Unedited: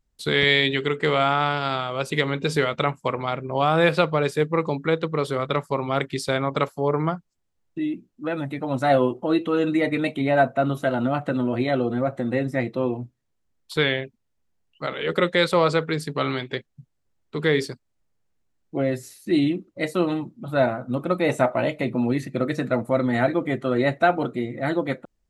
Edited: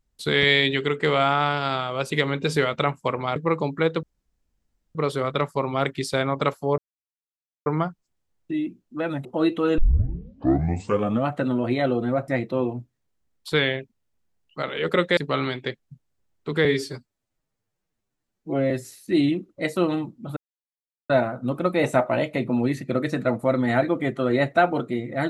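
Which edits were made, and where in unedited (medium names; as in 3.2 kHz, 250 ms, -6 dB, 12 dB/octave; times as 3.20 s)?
3.36–4.43 s: delete
5.10 s: insert room tone 0.92 s
6.93 s: insert silence 0.88 s
8.52–9.14 s: delete
9.67 s: tape start 1.51 s
12.17–12.52 s: delete
15.41–16.04 s: delete
17.52–18.89 s: stretch 1.5×
20.55 s: insert silence 0.73 s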